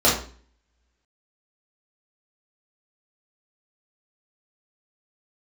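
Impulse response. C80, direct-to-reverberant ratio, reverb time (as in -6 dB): 10.5 dB, -7.5 dB, 0.45 s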